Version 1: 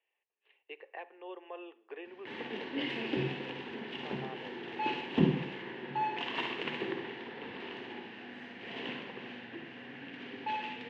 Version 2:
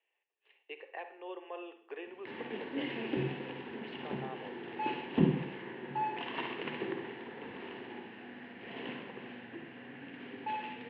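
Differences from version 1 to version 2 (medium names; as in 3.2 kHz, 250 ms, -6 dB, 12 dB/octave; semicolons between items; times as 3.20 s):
speech: send +11.0 dB; background: add distance through air 310 m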